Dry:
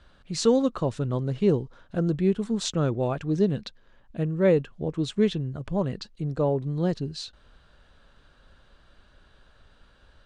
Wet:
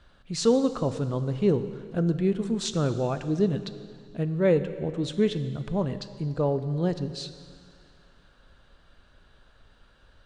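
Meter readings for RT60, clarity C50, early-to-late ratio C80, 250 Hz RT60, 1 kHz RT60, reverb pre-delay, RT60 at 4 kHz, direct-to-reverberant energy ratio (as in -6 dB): 2.2 s, 12.0 dB, 12.5 dB, 2.2 s, 2.2 s, 3 ms, 2.1 s, 10.5 dB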